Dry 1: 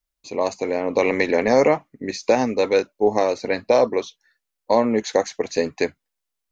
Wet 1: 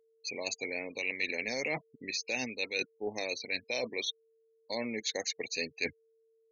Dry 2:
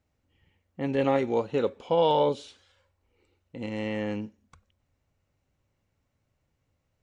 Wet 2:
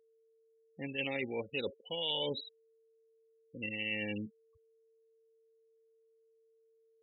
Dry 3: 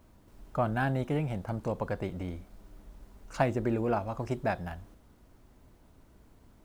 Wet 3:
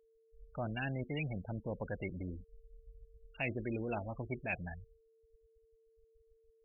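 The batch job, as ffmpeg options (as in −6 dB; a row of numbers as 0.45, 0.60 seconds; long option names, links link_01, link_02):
-af "afftfilt=real='re*gte(hypot(re,im),0.02)':imag='im*gte(hypot(re,im),0.02)':win_size=1024:overlap=0.75,highshelf=frequency=1800:width_type=q:width=3:gain=14,areverse,acompressor=threshold=-30dB:ratio=4,areverse,aeval=exprs='val(0)+0.000708*sin(2*PI*450*n/s)':channel_layout=same,volume=-4.5dB"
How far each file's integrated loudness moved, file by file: −14.0, −9.5, −8.0 LU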